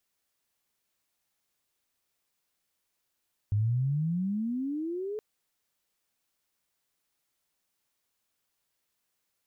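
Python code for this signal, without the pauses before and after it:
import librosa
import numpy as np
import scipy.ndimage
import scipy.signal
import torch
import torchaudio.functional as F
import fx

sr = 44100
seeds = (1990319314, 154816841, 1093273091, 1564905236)

y = fx.riser_tone(sr, length_s=1.67, level_db=-23, wave='sine', hz=100.0, rise_st=25.5, swell_db=-9.0)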